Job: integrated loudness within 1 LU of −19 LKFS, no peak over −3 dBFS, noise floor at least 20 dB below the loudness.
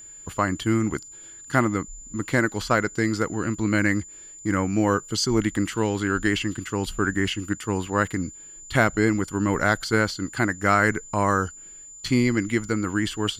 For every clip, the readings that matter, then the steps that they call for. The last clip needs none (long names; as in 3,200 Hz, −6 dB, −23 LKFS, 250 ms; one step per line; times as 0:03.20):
interfering tone 7,100 Hz; level of the tone −41 dBFS; integrated loudness −24.0 LKFS; sample peak −5.5 dBFS; target loudness −19.0 LKFS
→ notch filter 7,100 Hz, Q 30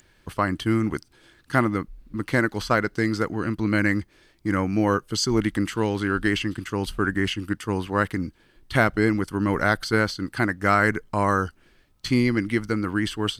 interfering tone none found; integrated loudness −24.0 LKFS; sample peak −5.5 dBFS; target loudness −19.0 LKFS
→ level +5 dB
brickwall limiter −3 dBFS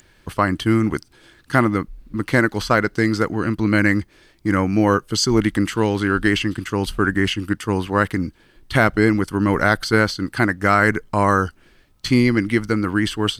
integrated loudness −19.5 LKFS; sample peak −3.0 dBFS; background noise floor −55 dBFS